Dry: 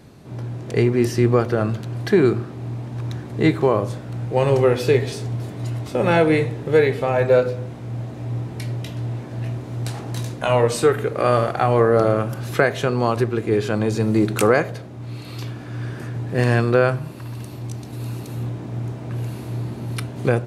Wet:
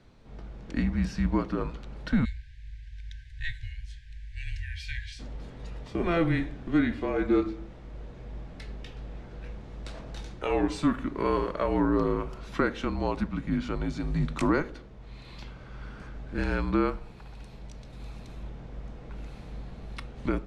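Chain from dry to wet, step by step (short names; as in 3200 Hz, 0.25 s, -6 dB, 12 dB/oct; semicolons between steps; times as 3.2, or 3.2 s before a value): BPF 140–5200 Hz; spectral delete 2.25–5.2, 290–1700 Hz; frequency shift -170 Hz; gain -8.5 dB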